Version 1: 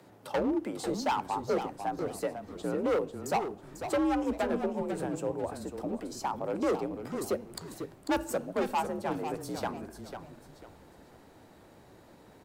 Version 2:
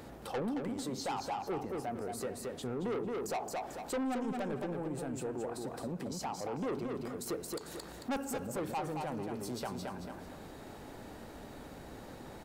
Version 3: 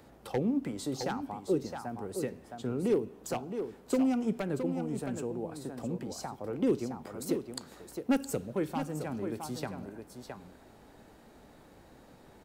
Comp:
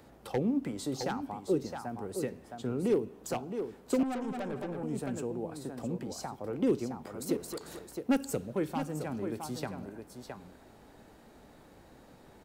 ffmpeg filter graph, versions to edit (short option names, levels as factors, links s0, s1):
-filter_complex "[1:a]asplit=2[s0][s1];[2:a]asplit=3[s2][s3][s4];[s2]atrim=end=4.032[s5];[s0]atrim=start=4.028:end=4.832[s6];[s3]atrim=start=4.828:end=7.372[s7];[s1]atrim=start=7.368:end=7.792[s8];[s4]atrim=start=7.788[s9];[s5][s6]acrossfade=d=0.004:c1=hsin:c2=hsin[s10];[s10][s7]acrossfade=d=0.004:c1=hsin:c2=hsin[s11];[s11][s8]acrossfade=d=0.004:c1=hsin:c2=hsin[s12];[s12][s9]acrossfade=d=0.004:c1=hsin:c2=hsin"